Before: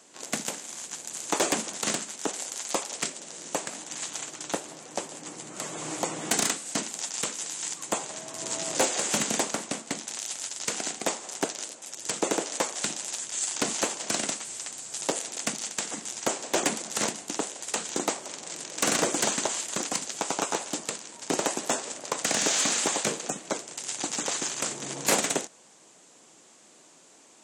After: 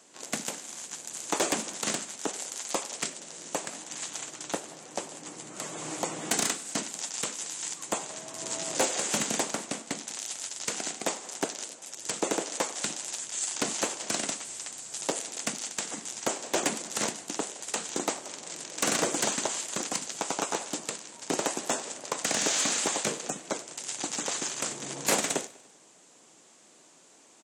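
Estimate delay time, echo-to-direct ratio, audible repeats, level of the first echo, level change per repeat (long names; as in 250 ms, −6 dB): 98 ms, −19.5 dB, 3, −21.0 dB, −5.0 dB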